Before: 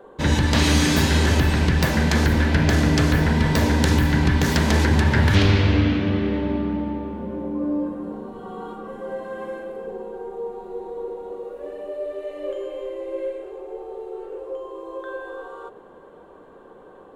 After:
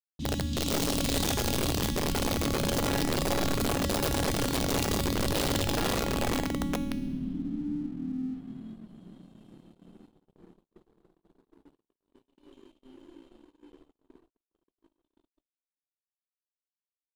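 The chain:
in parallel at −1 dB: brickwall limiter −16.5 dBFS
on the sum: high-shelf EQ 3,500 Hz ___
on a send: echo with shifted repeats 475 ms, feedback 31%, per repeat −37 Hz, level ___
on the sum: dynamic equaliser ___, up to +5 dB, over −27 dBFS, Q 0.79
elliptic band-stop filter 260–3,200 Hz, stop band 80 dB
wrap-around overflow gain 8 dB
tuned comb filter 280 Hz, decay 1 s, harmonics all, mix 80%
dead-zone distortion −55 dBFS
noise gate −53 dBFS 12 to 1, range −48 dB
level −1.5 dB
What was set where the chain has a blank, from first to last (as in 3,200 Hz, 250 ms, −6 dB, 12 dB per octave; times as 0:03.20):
−4 dB, −3 dB, 330 Hz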